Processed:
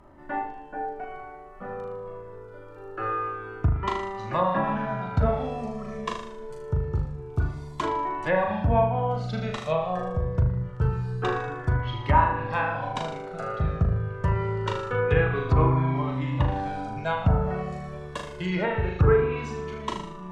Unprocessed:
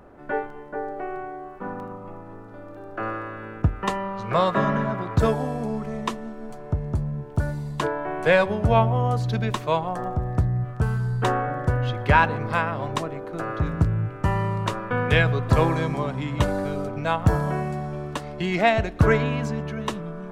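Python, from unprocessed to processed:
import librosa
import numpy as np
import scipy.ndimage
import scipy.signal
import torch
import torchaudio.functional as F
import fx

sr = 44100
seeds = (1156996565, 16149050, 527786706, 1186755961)

y = fx.room_flutter(x, sr, wall_m=6.6, rt60_s=0.64)
y = fx.env_lowpass_down(y, sr, base_hz=1500.0, full_db=-13.5)
y = fx.comb_cascade(y, sr, direction='falling', hz=0.25)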